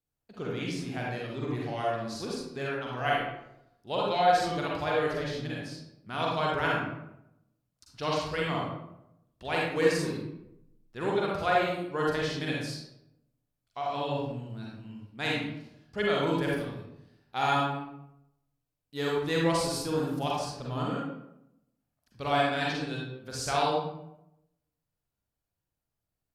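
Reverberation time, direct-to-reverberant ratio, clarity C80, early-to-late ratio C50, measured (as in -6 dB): 0.85 s, -4.0 dB, 3.0 dB, -1.5 dB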